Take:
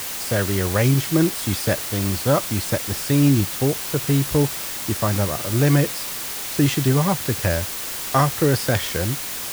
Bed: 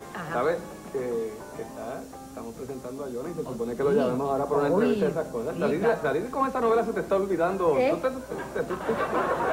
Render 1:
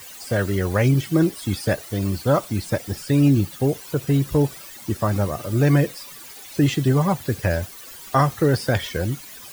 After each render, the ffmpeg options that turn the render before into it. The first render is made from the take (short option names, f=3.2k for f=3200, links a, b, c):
-af "afftdn=nr=15:nf=-30"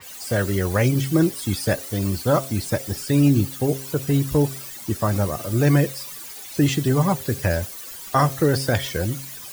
-af "bandreject=f=134.2:t=h:w=4,bandreject=f=268.4:t=h:w=4,bandreject=f=402.6:t=h:w=4,bandreject=f=536.8:t=h:w=4,bandreject=f=671:t=h:w=4,adynamicequalizer=threshold=0.00631:dfrequency=4600:dqfactor=0.7:tfrequency=4600:tqfactor=0.7:attack=5:release=100:ratio=0.375:range=2.5:mode=boostabove:tftype=highshelf"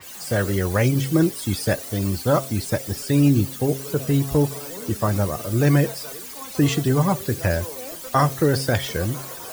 -filter_complex "[1:a]volume=-14.5dB[a];[0:a][a]amix=inputs=2:normalize=0"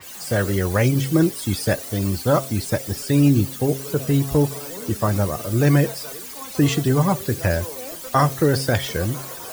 -af "volume=1dB"